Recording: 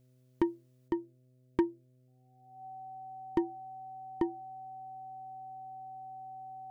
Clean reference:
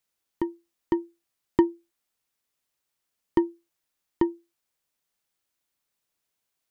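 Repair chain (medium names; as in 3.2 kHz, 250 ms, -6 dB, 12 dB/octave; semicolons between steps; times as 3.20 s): clip repair -18.5 dBFS; de-hum 127 Hz, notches 5; band-stop 760 Hz, Q 30; gain correction +7.5 dB, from 0.88 s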